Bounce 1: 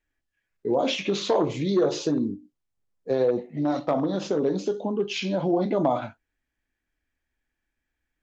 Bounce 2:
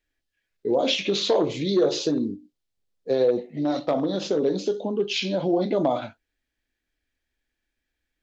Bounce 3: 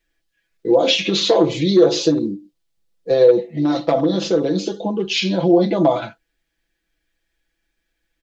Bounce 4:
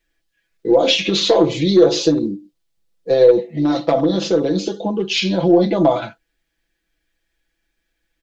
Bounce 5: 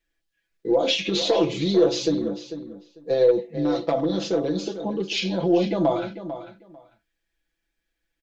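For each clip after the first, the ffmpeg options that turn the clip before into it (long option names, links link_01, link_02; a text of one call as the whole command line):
ffmpeg -i in.wav -af "equalizer=frequency=125:width_type=o:width=1:gain=-3,equalizer=frequency=500:width_type=o:width=1:gain=3,equalizer=frequency=1000:width_type=o:width=1:gain=-4,equalizer=frequency=4000:width_type=o:width=1:gain=7" out.wav
ffmpeg -i in.wav -af "aecho=1:1:6:0.84,volume=4.5dB" out.wav
ffmpeg -i in.wav -af "aeval=exprs='0.794*(cos(1*acos(clip(val(0)/0.794,-1,1)))-cos(1*PI/2))+0.00631*(cos(6*acos(clip(val(0)/0.794,-1,1)))-cos(6*PI/2))':channel_layout=same,volume=1dB" out.wav
ffmpeg -i in.wav -filter_complex "[0:a]asplit=2[link_01][link_02];[link_02]adelay=446,lowpass=frequency=4900:poles=1,volume=-11.5dB,asplit=2[link_03][link_04];[link_04]adelay=446,lowpass=frequency=4900:poles=1,volume=0.18[link_05];[link_01][link_03][link_05]amix=inputs=3:normalize=0,volume=-7dB" out.wav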